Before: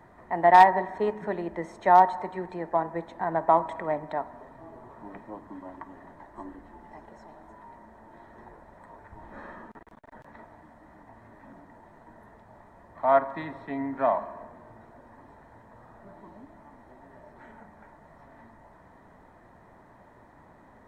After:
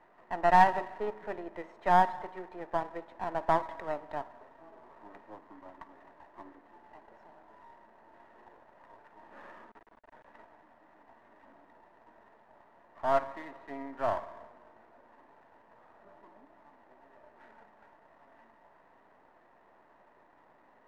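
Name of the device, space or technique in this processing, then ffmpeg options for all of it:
crystal radio: -af "highpass=350,lowpass=2.8k,aeval=exprs='if(lt(val(0),0),0.447*val(0),val(0))':c=same,volume=-3.5dB"

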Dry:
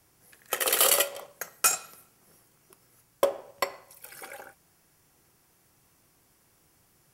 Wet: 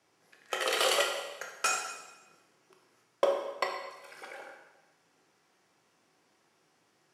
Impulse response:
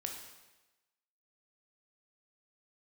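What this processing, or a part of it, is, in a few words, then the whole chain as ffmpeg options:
supermarket ceiling speaker: -filter_complex "[0:a]highpass=240,lowpass=5.2k[a];[1:a]atrim=start_sample=2205[b];[a][b]afir=irnorm=-1:irlink=0"

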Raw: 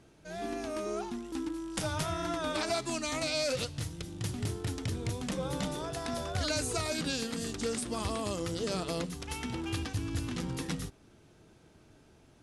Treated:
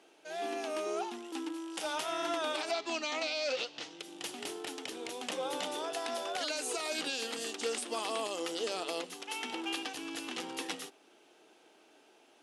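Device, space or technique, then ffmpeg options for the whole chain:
laptop speaker: -filter_complex "[0:a]asettb=1/sr,asplit=3[a][b][c];[a]atrim=end=2.714[d];[b]atrim=start=2.71:end=4,asetpts=PTS-STARTPTS,afade=t=in:d=0.004:c=qsin,afade=t=out:st=1.286:d=0.004:c=qsin,lowpass=f=6k:w=0.5412,lowpass=f=6k:w=1.3066[e];[c]atrim=start=3.996[f];[d][e]acrossfade=d=0.004:c1=hsin:c2=qsin[g];[g][f]acrossfade=d=0.004:c1=qsin:c2=hsin,highpass=f=320:w=0.5412,highpass=f=320:w=1.3066,equalizer=f=790:t=o:w=0.29:g=6,equalizer=f=2.9k:t=o:w=0.56:g=7,alimiter=limit=-23dB:level=0:latency=1:release=142"

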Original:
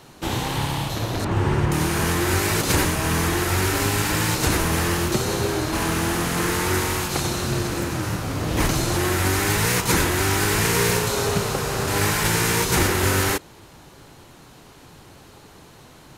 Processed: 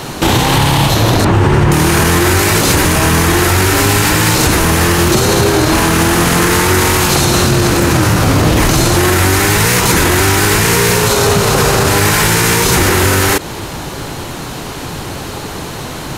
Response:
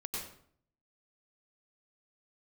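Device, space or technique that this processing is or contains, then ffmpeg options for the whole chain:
loud club master: -af "acompressor=threshold=-24dB:ratio=2.5,asoftclip=type=hard:threshold=-15.5dB,alimiter=level_in=24dB:limit=-1dB:release=50:level=0:latency=1,volume=-1dB"

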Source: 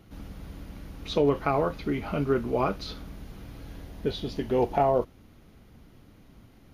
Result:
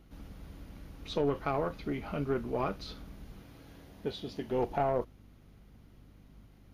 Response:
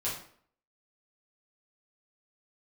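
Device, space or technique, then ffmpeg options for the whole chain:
valve amplifier with mains hum: -filter_complex "[0:a]aeval=exprs='(tanh(5.62*val(0)+0.4)-tanh(0.4))/5.62':c=same,aeval=exprs='val(0)+0.00251*(sin(2*PI*50*n/s)+sin(2*PI*2*50*n/s)/2+sin(2*PI*3*50*n/s)/3+sin(2*PI*4*50*n/s)/4+sin(2*PI*5*50*n/s)/5)':c=same,asettb=1/sr,asplit=3[a][b][c];[a]atrim=end=3.424[d];[b]atrim=start=3.42:end=4.53,asetpts=PTS-STARTPTS,afade=t=in:d=0.004:c=qsin,afade=t=out:st=1.106:d=0.004:c=qsin,highpass=f=130:p=1[e];[c]atrim=start=4.526[f];[d][e]acrossfade=d=0.004:c1=hsin:c2=qsin[g];[g][f]acrossfade=d=0.004:c1=qsin:c2=hsin,volume=-5dB"

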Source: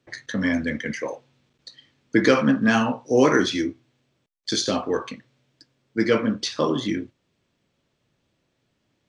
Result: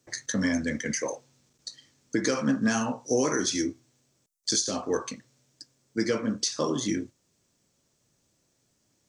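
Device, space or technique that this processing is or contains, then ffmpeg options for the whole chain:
over-bright horn tweeter: -af "highshelf=f=4.6k:t=q:w=1.5:g=12.5,alimiter=limit=-13dB:level=0:latency=1:release=377,volume=-2dB"

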